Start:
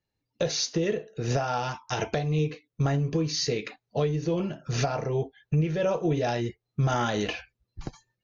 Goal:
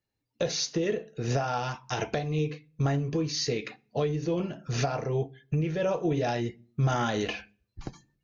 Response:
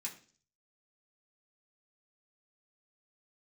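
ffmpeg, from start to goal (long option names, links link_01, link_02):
-filter_complex "[0:a]asplit=2[link_01][link_02];[1:a]atrim=start_sample=2205,lowpass=4300,lowshelf=frequency=240:gain=10[link_03];[link_02][link_03]afir=irnorm=-1:irlink=0,volume=-13dB[link_04];[link_01][link_04]amix=inputs=2:normalize=0,volume=-2dB"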